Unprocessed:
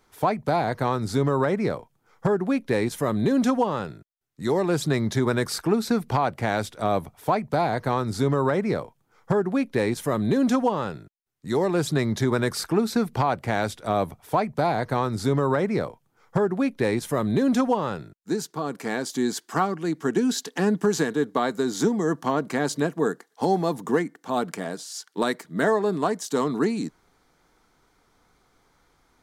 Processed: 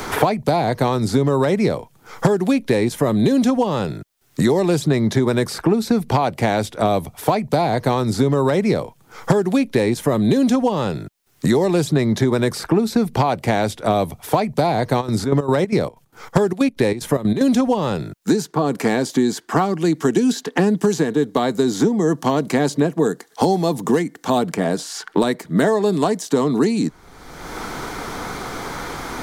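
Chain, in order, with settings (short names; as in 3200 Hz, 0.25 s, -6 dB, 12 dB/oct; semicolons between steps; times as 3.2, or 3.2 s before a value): 15–17.48 step gate ".xx.xx.x" 187 bpm -12 dB; dynamic EQ 1400 Hz, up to -7 dB, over -42 dBFS, Q 1.5; three-band squash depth 100%; gain +6 dB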